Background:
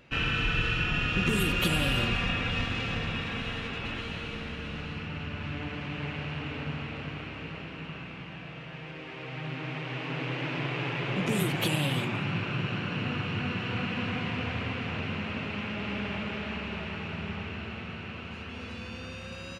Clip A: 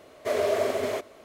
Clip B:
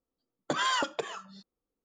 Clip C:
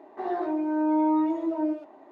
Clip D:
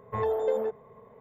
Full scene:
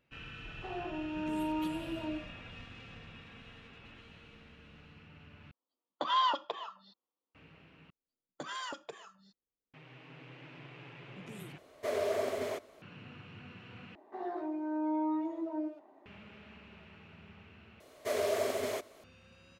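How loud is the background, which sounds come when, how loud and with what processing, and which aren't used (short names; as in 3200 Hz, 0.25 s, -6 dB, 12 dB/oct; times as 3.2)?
background -19 dB
0.45 add C -11.5 dB
5.51 replace with B -3.5 dB + speaker cabinet 360–4200 Hz, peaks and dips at 420 Hz -7 dB, 1000 Hz +8 dB, 1600 Hz -9 dB, 2300 Hz -8 dB, 3300 Hz +4 dB
7.9 replace with B -12.5 dB
11.58 replace with A -7.5 dB
13.95 replace with C -9.5 dB
17.8 replace with A -7 dB + high shelf 3800 Hz +7 dB
not used: D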